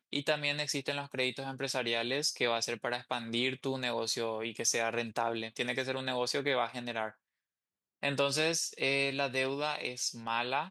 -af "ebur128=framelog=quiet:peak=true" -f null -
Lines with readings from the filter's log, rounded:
Integrated loudness:
  I:         -32.8 LUFS
  Threshold: -42.9 LUFS
Loudness range:
  LRA:         1.8 LU
  Threshold: -53.2 LUFS
  LRA low:   -34.4 LUFS
  LRA high:  -32.6 LUFS
True peak:
  Peak:      -14.6 dBFS